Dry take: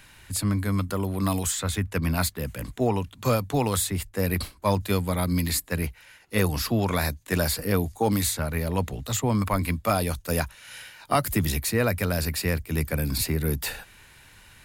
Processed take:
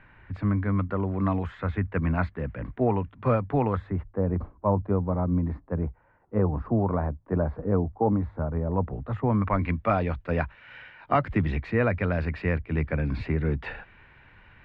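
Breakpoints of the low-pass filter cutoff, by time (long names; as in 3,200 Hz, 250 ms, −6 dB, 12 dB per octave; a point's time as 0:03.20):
low-pass filter 24 dB per octave
0:03.58 2,000 Hz
0:04.25 1,100 Hz
0:08.66 1,100 Hz
0:09.65 2,400 Hz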